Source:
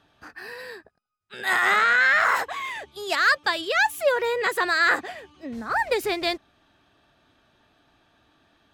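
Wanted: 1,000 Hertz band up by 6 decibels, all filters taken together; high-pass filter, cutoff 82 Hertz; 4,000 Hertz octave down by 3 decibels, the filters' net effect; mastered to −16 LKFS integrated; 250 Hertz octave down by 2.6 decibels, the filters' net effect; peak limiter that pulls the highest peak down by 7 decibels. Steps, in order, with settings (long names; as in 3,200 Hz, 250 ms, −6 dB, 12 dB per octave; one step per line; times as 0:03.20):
high-pass filter 82 Hz
parametric band 250 Hz −5 dB
parametric band 1,000 Hz +8.5 dB
parametric band 4,000 Hz −4 dB
level +6.5 dB
brickwall limiter −6 dBFS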